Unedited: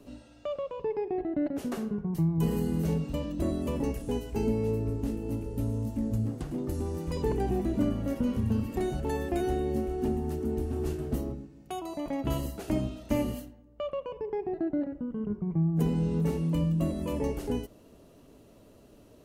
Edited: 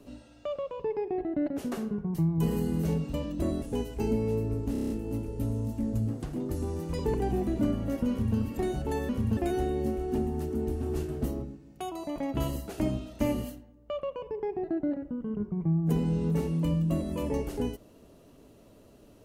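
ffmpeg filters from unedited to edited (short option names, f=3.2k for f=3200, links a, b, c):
-filter_complex "[0:a]asplit=10[a][b][c][d][e][f][g][h][i][j];[a]atrim=end=3.622[k];[b]atrim=start=3.978:end=5.112[l];[c]atrim=start=5.078:end=5.112[m];[d]atrim=start=5.078:end=5.112[n];[e]atrim=start=5.078:end=5.112[o];[f]atrim=start=5.078:end=5.112[p];[g]atrim=start=5.078:end=5.112[q];[h]atrim=start=5.078:end=9.272[r];[i]atrim=start=8.278:end=8.562[s];[j]atrim=start=9.268[t];[k][l]acrossfade=d=0.004:c1=hsin:c2=hsin[u];[u][m]acrossfade=d=0.004:c1=hsin:c2=hsin[v];[v][n]acrossfade=d=0.004:c1=hsin:c2=hsin[w];[w][o]acrossfade=d=0.004:c1=hsin:c2=hsin[x];[x][p]acrossfade=d=0.004:c1=hsin:c2=hsin[y];[y][q]acrossfade=d=0.004:c1=hsin:c2=hsin[z];[z][r]acrossfade=d=0.004:c1=hsin:c2=hsin[aa];[aa][s]acrossfade=d=0.004:c1=hsin:c2=hsin[ab];[ab][t]acrossfade=d=0.004:c1=hsin:c2=hsin"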